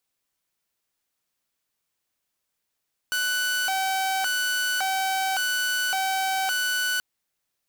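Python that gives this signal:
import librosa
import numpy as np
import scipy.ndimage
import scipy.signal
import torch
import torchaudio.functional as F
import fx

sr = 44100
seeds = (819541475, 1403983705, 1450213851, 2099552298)

y = fx.siren(sr, length_s=3.88, kind='hi-lo', low_hz=766.0, high_hz=1490.0, per_s=0.89, wave='saw', level_db=-20.5)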